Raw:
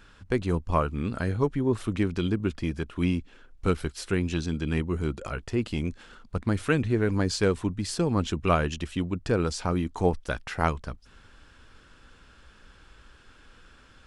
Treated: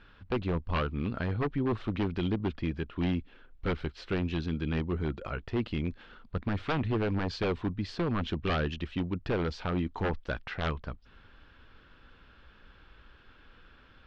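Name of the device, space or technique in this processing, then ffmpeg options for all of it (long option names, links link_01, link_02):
synthesiser wavefolder: -af "aeval=exprs='0.1*(abs(mod(val(0)/0.1+3,4)-2)-1)':channel_layout=same,lowpass=frequency=4000:width=0.5412,lowpass=frequency=4000:width=1.3066,volume=-2.5dB"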